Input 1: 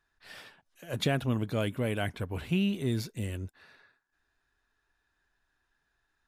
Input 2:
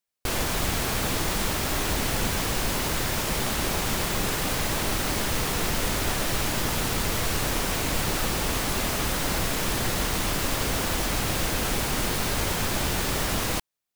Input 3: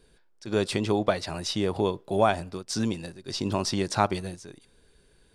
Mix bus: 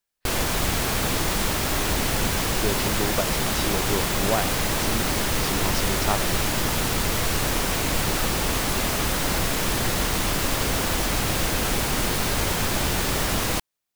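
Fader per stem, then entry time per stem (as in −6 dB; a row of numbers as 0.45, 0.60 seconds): −19.0, +2.5, −3.5 decibels; 0.00, 0.00, 2.10 seconds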